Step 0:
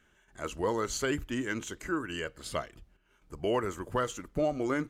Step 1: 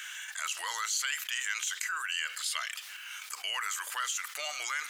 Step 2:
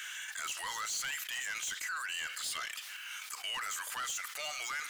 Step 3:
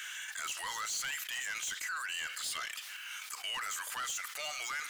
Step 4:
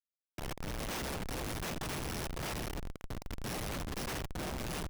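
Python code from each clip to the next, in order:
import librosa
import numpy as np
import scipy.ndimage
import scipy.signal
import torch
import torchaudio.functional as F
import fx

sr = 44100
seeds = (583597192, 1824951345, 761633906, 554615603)

y1 = scipy.signal.sosfilt(scipy.signal.bessel(4, 2300.0, 'highpass', norm='mag', fs=sr, output='sos'), x)
y1 = fx.env_flatten(y1, sr, amount_pct=70)
y1 = y1 * librosa.db_to_amplitude(4.0)
y2 = 10.0 ** (-32.5 / 20.0) * np.tanh(y1 / 10.0 ** (-32.5 / 20.0))
y3 = y2
y4 = fx.bit_reversed(y3, sr, seeds[0], block=32)
y4 = fx.echo_swell(y4, sr, ms=85, loudest=8, wet_db=-18.0)
y4 = fx.schmitt(y4, sr, flips_db=-33.0)
y4 = y4 * librosa.db_to_amplitude(1.0)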